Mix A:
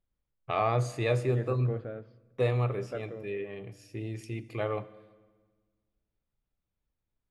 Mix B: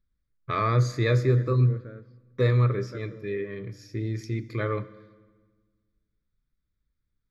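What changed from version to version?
first voice +8.0 dB; master: add fixed phaser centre 2800 Hz, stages 6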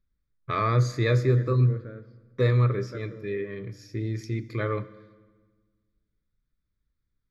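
second voice: send +8.5 dB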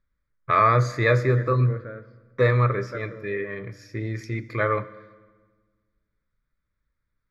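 master: add band shelf 1100 Hz +9 dB 2.4 oct

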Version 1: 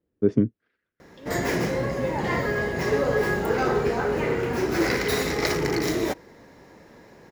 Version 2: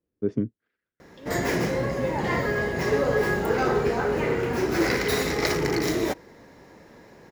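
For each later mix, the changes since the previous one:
first voice -5.5 dB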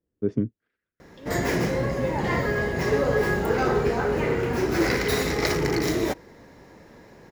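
master: add low shelf 110 Hz +5.5 dB

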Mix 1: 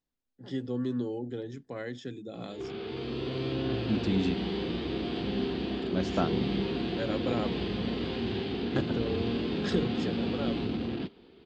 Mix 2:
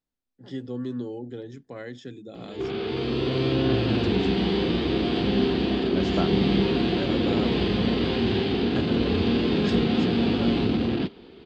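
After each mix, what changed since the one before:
background +8.5 dB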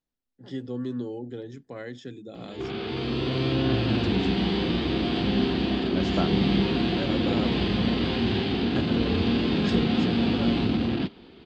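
background: add bell 430 Hz -5.5 dB 0.57 oct

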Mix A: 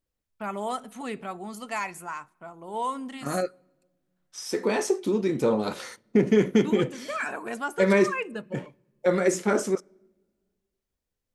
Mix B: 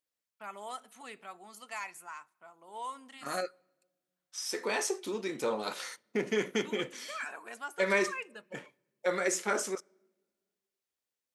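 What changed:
first voice -6.0 dB; master: add HPF 1200 Hz 6 dB/oct

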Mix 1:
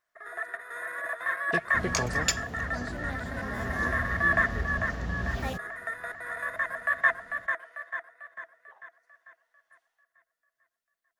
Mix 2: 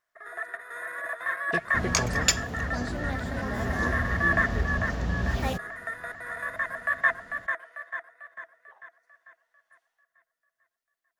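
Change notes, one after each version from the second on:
second sound +4.5 dB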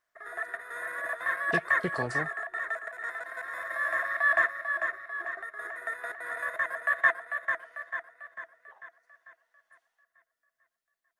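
second sound: muted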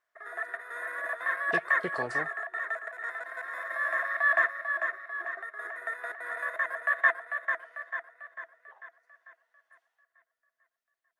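master: add tone controls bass -10 dB, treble -5 dB

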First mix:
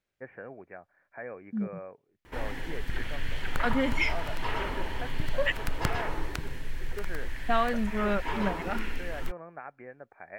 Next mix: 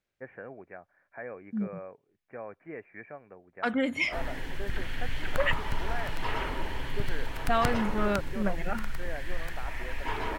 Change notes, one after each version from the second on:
background: entry +1.80 s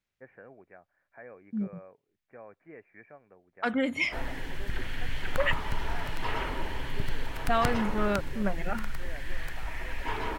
first voice -7.0 dB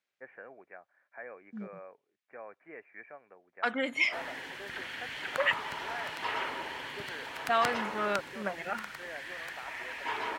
first voice +4.0 dB; master: add weighting filter A

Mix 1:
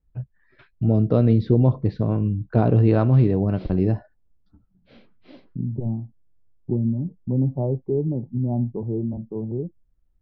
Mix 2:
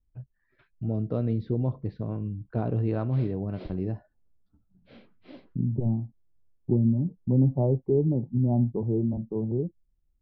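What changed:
first voice -10.0 dB; master: add air absorption 88 m

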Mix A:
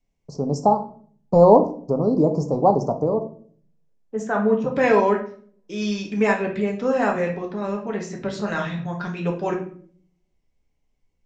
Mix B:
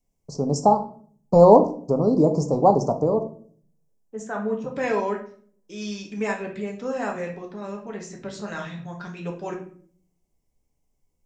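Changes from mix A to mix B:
second voice -7.5 dB; master: remove air absorption 91 m

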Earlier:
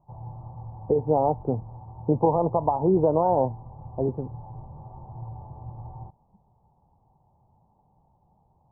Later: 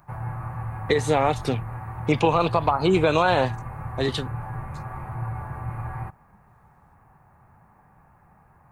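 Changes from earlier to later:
background +7.0 dB; master: remove Chebyshev low-pass 930 Hz, order 5

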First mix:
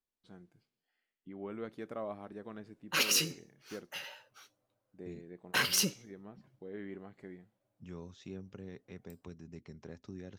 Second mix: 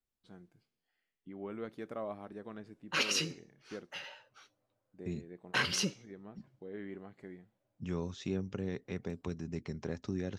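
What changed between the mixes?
second voice +9.5 dB; background: add air absorption 81 m

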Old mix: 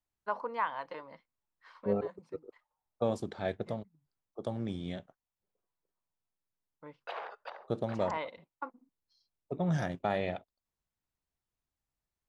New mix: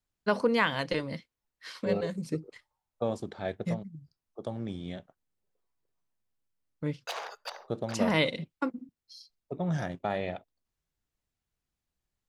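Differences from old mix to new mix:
first voice: remove band-pass 960 Hz, Q 2.9; background: remove air absorption 460 m

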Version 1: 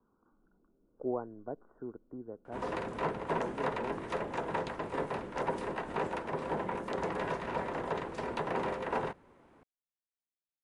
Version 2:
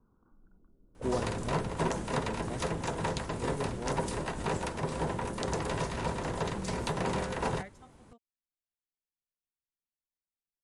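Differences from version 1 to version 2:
second sound: entry -1.50 s; master: remove three-band isolator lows -13 dB, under 220 Hz, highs -17 dB, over 2900 Hz

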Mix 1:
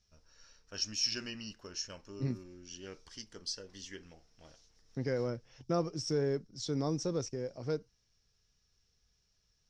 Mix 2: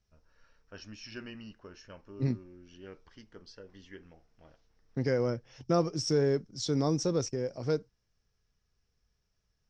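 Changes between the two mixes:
first voice: add LPF 2100 Hz 12 dB/oct; second voice +5.0 dB

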